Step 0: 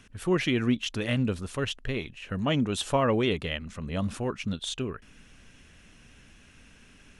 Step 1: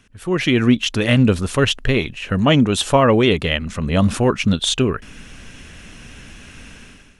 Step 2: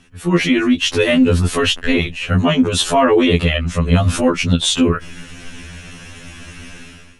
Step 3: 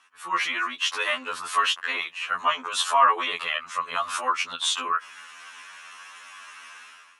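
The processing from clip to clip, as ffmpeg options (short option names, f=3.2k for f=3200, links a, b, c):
-af "dynaudnorm=f=160:g=5:m=15dB"
-af "alimiter=limit=-10dB:level=0:latency=1:release=22,afftfilt=real='re*2*eq(mod(b,4),0)':imag='im*2*eq(mod(b,4),0)':win_size=2048:overlap=0.75,volume=7dB"
-af "highpass=f=1.1k:t=q:w=4.4,volume=-8.5dB"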